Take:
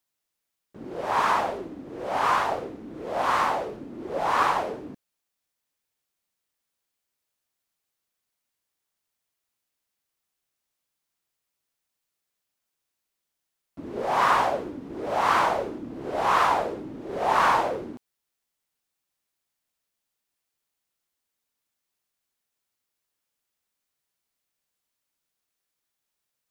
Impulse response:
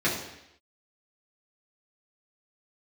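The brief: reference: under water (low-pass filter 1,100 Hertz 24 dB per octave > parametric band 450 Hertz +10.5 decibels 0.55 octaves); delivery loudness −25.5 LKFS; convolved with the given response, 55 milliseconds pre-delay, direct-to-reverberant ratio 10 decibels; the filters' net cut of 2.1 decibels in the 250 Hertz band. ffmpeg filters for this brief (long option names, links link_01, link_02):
-filter_complex "[0:a]equalizer=frequency=250:width_type=o:gain=-7,asplit=2[link_01][link_02];[1:a]atrim=start_sample=2205,adelay=55[link_03];[link_02][link_03]afir=irnorm=-1:irlink=0,volume=-23dB[link_04];[link_01][link_04]amix=inputs=2:normalize=0,lowpass=frequency=1100:width=0.5412,lowpass=frequency=1100:width=1.3066,equalizer=frequency=450:width_type=o:width=0.55:gain=10.5"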